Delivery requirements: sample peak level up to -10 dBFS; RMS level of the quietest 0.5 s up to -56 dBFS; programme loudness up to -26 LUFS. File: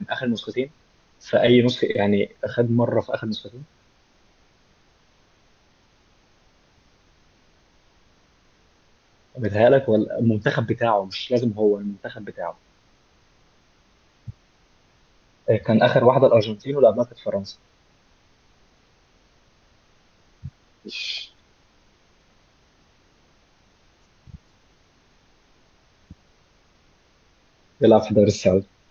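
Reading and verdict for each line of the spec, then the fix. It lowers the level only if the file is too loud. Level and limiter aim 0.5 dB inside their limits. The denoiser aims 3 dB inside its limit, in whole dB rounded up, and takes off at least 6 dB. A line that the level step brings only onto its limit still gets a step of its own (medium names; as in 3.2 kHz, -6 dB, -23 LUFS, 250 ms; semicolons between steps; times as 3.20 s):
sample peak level -3.5 dBFS: fail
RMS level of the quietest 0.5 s -59 dBFS: pass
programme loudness -21.0 LUFS: fail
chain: trim -5.5 dB; peak limiter -10.5 dBFS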